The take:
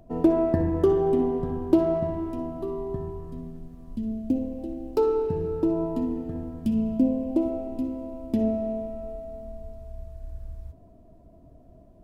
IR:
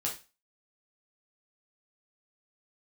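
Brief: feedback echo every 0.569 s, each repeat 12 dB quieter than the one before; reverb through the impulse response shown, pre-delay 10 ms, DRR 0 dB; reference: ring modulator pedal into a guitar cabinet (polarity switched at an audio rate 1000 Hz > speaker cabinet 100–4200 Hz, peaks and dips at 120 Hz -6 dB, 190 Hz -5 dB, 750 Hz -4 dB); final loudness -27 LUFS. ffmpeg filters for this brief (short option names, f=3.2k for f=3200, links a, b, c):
-filter_complex "[0:a]aecho=1:1:569|1138|1707:0.251|0.0628|0.0157,asplit=2[a][b];[1:a]atrim=start_sample=2205,adelay=10[c];[b][c]afir=irnorm=-1:irlink=0,volume=-3.5dB[d];[a][d]amix=inputs=2:normalize=0,aeval=exprs='val(0)*sgn(sin(2*PI*1000*n/s))':c=same,highpass=100,equalizer=f=120:t=q:w=4:g=-6,equalizer=f=190:t=q:w=4:g=-5,equalizer=f=750:t=q:w=4:g=-4,lowpass=f=4.2k:w=0.5412,lowpass=f=4.2k:w=1.3066,volume=-3.5dB"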